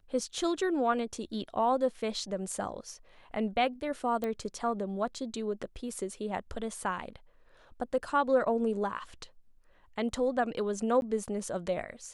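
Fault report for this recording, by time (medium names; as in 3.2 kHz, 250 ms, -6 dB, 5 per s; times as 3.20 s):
4.24 s: pop -21 dBFS
11.01–11.02 s: dropout 11 ms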